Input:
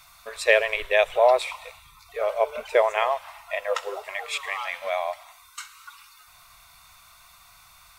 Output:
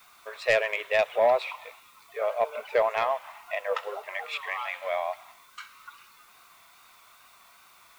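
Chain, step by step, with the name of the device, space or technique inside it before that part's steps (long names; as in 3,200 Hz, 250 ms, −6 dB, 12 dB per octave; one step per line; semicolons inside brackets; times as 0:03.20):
tape answering machine (band-pass filter 380–3,200 Hz; soft clipping −12 dBFS, distortion −17 dB; tape wow and flutter; white noise bed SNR 30 dB)
level −1.5 dB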